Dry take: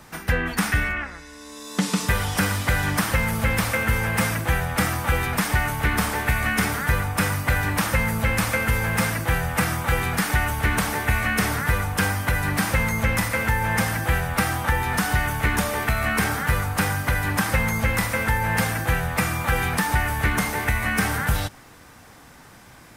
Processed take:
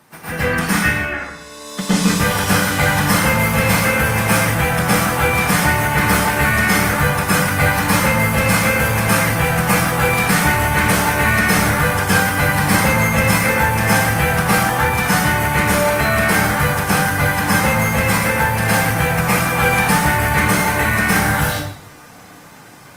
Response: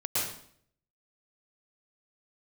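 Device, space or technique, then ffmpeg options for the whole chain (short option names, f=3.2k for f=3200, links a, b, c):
far-field microphone of a smart speaker: -filter_complex "[1:a]atrim=start_sample=2205[a];[0:a][a]afir=irnorm=-1:irlink=0,highpass=130,dynaudnorm=f=180:g=21:m=11.5dB,volume=-1dB" -ar 48000 -c:a libopus -b:a 32k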